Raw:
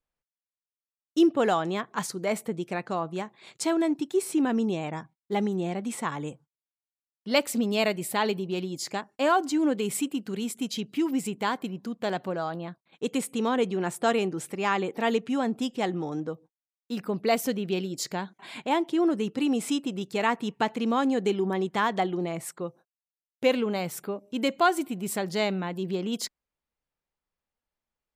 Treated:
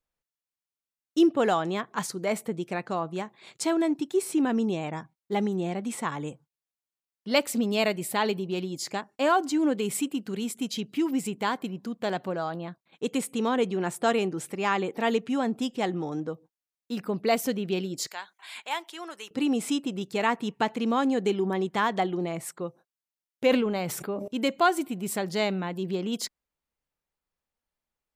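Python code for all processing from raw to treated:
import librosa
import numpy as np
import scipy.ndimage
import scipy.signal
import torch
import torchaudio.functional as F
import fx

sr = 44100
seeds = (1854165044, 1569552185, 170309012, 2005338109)

y = fx.chain(x, sr, fx.highpass(hz=1100.0, slope=12),
    fx.high_shelf(hz=9200.0, db=8.0), at=(18.07, 19.31))
y = fx.chain(y, sr, fx.high_shelf(hz=4200.0, db=-4.5),
    fx.sustainer(db_per_s=48.0), at=(23.46, 24.28))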